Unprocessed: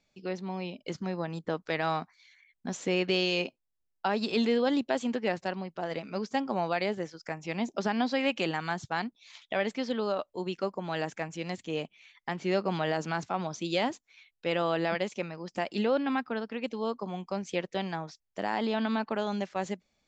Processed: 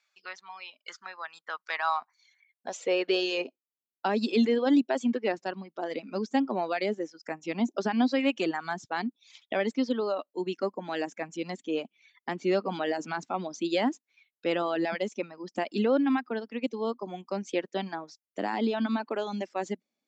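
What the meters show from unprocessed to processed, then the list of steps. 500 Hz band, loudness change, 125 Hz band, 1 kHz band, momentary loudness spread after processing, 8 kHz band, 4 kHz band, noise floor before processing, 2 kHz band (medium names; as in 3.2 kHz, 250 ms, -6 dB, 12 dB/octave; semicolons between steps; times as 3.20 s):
+1.0 dB, +1.5 dB, -5.5 dB, +0.5 dB, 15 LU, no reading, -1.5 dB, -80 dBFS, -0.5 dB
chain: Chebyshev shaper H 2 -27 dB, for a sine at -13 dBFS; high-pass sweep 1.3 kHz -> 260 Hz, 1.55–3.89 s; reverb removal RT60 1.5 s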